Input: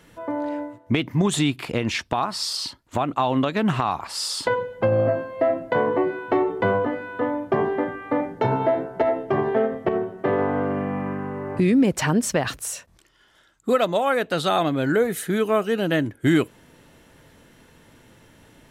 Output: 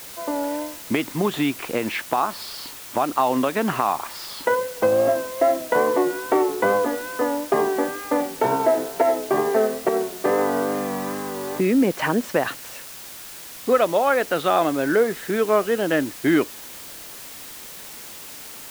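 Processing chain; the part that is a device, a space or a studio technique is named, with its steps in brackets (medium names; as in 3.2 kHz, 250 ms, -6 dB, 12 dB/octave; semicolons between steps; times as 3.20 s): wax cylinder (band-pass 270–2500 Hz; wow and flutter; white noise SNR 16 dB); trim +2.5 dB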